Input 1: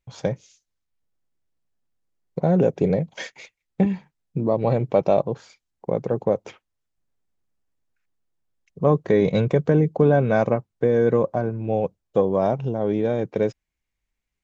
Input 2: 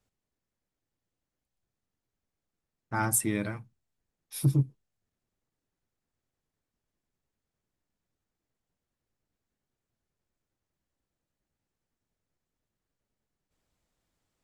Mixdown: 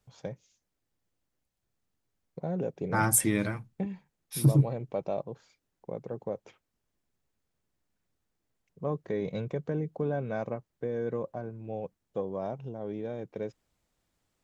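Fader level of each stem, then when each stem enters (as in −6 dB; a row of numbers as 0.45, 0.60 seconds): −14.0, +2.5 decibels; 0.00, 0.00 seconds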